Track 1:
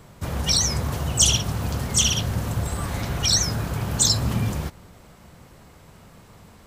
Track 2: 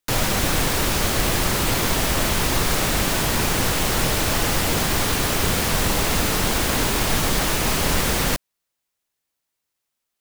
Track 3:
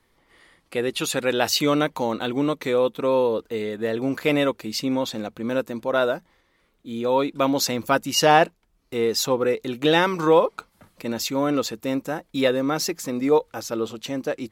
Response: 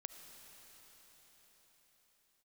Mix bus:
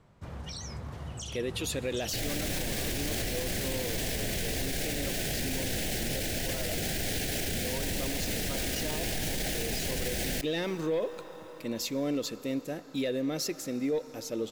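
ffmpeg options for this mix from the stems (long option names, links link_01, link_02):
-filter_complex "[0:a]aemphasis=mode=reproduction:type=50fm,alimiter=limit=-17dB:level=0:latency=1:release=183,volume=-13.5dB[link_01];[1:a]adelay=2050,volume=0dB,asplit=2[link_02][link_03];[link_03]volume=-23.5dB[link_04];[2:a]acontrast=87,adelay=600,volume=-16dB,asplit=2[link_05][link_06];[link_06]volume=-4dB[link_07];[link_02][link_05]amix=inputs=2:normalize=0,asuperstop=centerf=1100:order=8:qfactor=1.5,alimiter=limit=-18.5dB:level=0:latency=1,volume=0dB[link_08];[3:a]atrim=start_sample=2205[link_09];[link_04][link_07]amix=inputs=2:normalize=0[link_10];[link_10][link_09]afir=irnorm=-1:irlink=0[link_11];[link_01][link_08][link_11]amix=inputs=3:normalize=0,alimiter=limit=-23dB:level=0:latency=1"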